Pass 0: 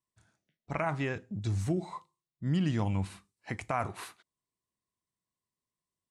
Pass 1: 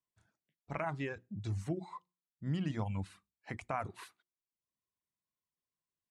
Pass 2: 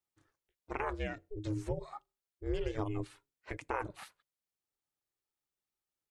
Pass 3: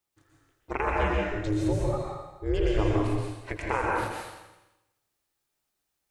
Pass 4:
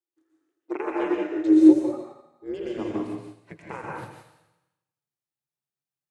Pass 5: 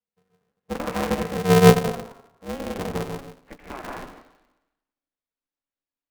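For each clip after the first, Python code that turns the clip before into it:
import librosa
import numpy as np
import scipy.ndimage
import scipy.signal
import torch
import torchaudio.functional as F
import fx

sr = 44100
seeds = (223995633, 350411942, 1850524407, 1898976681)

y1 = fx.hum_notches(x, sr, base_hz=60, count=6)
y1 = fx.dereverb_blind(y1, sr, rt60_s=0.64)
y1 = fx.high_shelf(y1, sr, hz=5000.0, db=-5.5)
y1 = F.gain(torch.from_numpy(y1), -4.5).numpy()
y2 = y1 * np.sin(2.0 * np.pi * 210.0 * np.arange(len(y1)) / sr)
y2 = F.gain(torch.from_numpy(y2), 3.5).numpy()
y3 = fx.echo_feedback(y2, sr, ms=83, feedback_pct=58, wet_db=-12)
y3 = fx.rev_plate(y3, sr, seeds[0], rt60_s=0.93, hf_ratio=0.95, predelay_ms=110, drr_db=-2.0)
y3 = F.gain(torch.from_numpy(y3), 7.0).numpy()
y4 = fx.filter_sweep_highpass(y3, sr, from_hz=330.0, to_hz=140.0, start_s=1.57, end_s=4.08, q=7.5)
y4 = y4 + 10.0 ** (-12.5 / 20.0) * np.pad(y4, (int(142 * sr / 1000.0), 0))[:len(y4)]
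y4 = fx.upward_expand(y4, sr, threshold_db=-40.0, expansion=1.5)
y5 = fx.air_absorb(y4, sr, metres=190.0)
y5 = y5 * np.sign(np.sin(2.0 * np.pi * 140.0 * np.arange(len(y5)) / sr))
y5 = F.gain(torch.from_numpy(y5), 1.0).numpy()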